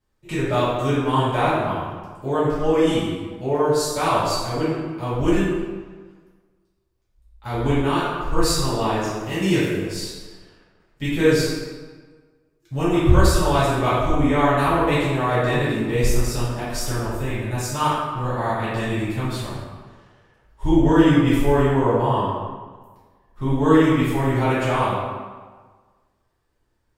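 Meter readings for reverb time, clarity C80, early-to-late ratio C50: 1.4 s, 1.5 dB, -2.0 dB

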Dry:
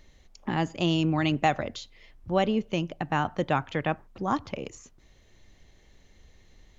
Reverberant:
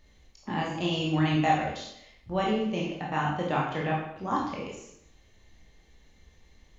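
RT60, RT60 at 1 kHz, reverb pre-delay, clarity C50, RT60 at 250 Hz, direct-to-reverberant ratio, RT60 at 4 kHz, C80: 0.75 s, 0.75 s, 17 ms, 2.0 dB, 0.70 s, -4.5 dB, 0.70 s, 5.5 dB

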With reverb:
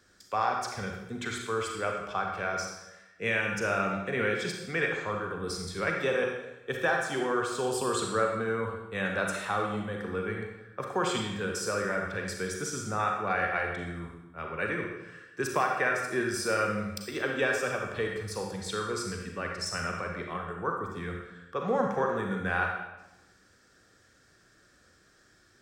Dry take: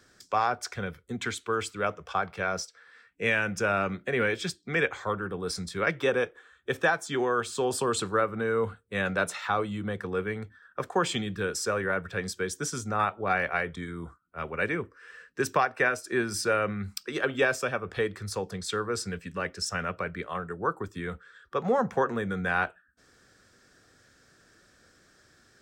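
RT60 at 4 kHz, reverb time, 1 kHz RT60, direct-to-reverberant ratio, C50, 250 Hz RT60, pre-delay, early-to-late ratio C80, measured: 0.90 s, 1.0 s, 1.0 s, 1.0 dB, 2.5 dB, 1.0 s, 34 ms, 5.0 dB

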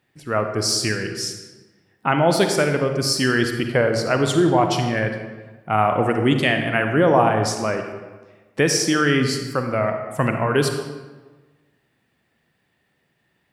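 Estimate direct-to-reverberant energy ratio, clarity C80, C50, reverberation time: 5.0 dB, 7.5 dB, 6.0 dB, 1.3 s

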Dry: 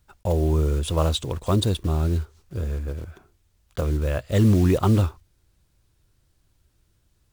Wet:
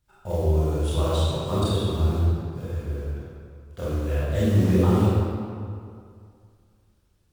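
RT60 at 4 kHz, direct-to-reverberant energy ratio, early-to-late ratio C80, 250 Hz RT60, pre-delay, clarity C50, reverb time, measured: 1.4 s, -10.0 dB, -1.5 dB, 2.3 s, 22 ms, -4.5 dB, 2.3 s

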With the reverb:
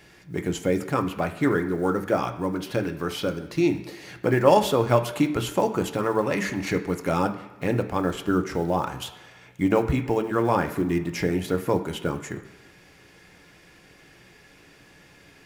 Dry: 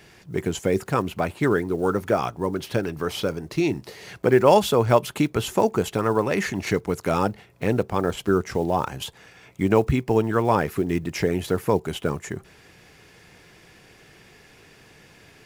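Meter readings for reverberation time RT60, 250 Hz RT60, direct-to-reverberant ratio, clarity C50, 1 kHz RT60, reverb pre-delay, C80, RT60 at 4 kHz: 1.3 s, 1.1 s, 5.0 dB, 11.5 dB, 1.2 s, 3 ms, 13.5 dB, 1.3 s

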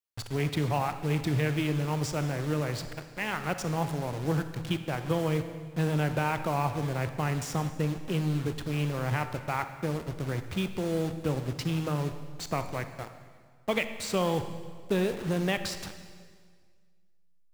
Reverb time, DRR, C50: 1.8 s, 9.0 dB, 10.0 dB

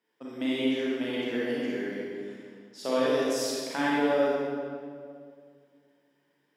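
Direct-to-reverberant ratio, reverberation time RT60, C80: -7.5 dB, 2.1 s, -1.5 dB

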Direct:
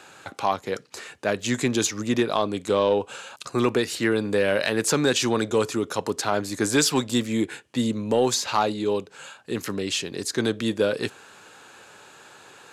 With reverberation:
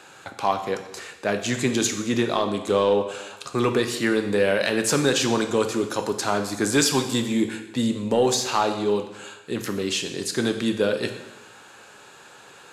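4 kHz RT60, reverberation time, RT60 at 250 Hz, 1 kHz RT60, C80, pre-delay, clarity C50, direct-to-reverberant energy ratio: 0.90 s, 1.0 s, 1.0 s, 1.0 s, 11.0 dB, 4 ms, 9.0 dB, 6.0 dB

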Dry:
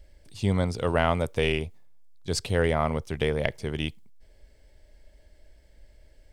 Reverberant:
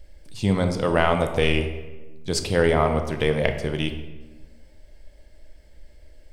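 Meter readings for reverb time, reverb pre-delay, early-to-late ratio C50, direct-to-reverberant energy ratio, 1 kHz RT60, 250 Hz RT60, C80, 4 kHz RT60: 1.2 s, 3 ms, 8.5 dB, 5.5 dB, 1.1 s, 1.6 s, 10.5 dB, 0.80 s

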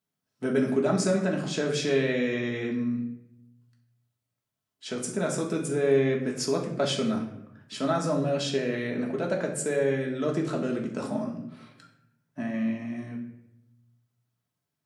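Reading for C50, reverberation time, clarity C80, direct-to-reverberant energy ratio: 7.0 dB, 0.80 s, 10.0 dB, -1.5 dB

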